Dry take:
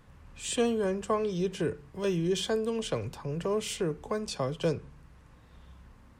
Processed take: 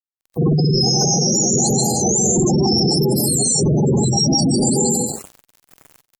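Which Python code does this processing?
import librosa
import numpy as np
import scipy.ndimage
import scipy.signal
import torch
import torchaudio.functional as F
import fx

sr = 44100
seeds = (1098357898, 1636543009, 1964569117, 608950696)

y = fx.octave_mirror(x, sr, pivot_hz=1100.0)
y = fx.brickwall_bandstop(y, sr, low_hz=870.0, high_hz=4000.0)
y = fx.rev_plate(y, sr, seeds[0], rt60_s=1.2, hf_ratio=0.95, predelay_ms=115, drr_db=-3.0)
y = fx.fuzz(y, sr, gain_db=46.0, gate_db=-47.0)
y = fx.spec_gate(y, sr, threshold_db=-15, keep='strong')
y = fx.peak_eq(y, sr, hz=3700.0, db=15.0, octaves=0.51, at=(4.17, 4.77))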